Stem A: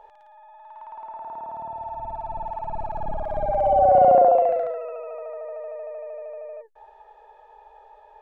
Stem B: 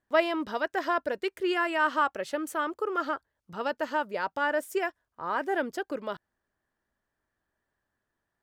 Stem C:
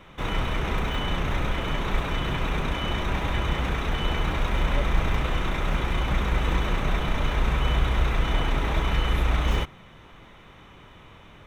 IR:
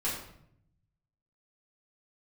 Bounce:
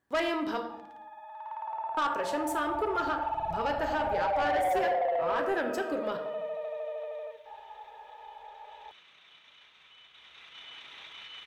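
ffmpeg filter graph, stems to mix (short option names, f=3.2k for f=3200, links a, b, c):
-filter_complex "[0:a]equalizer=f=220:t=o:w=2:g=-13.5,acompressor=threshold=-23dB:ratio=6,adelay=700,volume=2.5dB,asplit=2[a][b];[b]volume=-13.5dB[c];[1:a]volume=0dB,asplit=3[d][e][f];[d]atrim=end=0.6,asetpts=PTS-STARTPTS,afade=t=out:st=0.596:d=0.004:c=hsin[g];[e]atrim=start=0.6:end=1.97,asetpts=PTS-STARTPTS,volume=0[h];[f]atrim=start=1.97,asetpts=PTS-STARTPTS,afade=t=in:d=0.004:c=hsin[i];[g][h][i]concat=n=3:v=0:a=1,asplit=2[j][k];[k]volume=-7.5dB[l];[2:a]alimiter=limit=-16.5dB:level=0:latency=1:release=29,bandpass=f=3.5k:t=q:w=2.1:csg=0,adelay=2300,volume=-6.5dB,afade=t=in:st=8.48:d=0.46:silence=0.446684,afade=t=in:st=10.09:d=0.68:silence=0.334965[m];[3:a]atrim=start_sample=2205[n];[c][l]amix=inputs=2:normalize=0[o];[o][n]afir=irnorm=-1:irlink=0[p];[a][j][m][p]amix=inputs=4:normalize=0,highpass=66,asoftclip=type=tanh:threshold=-19.5dB,acompressor=threshold=-31dB:ratio=1.5"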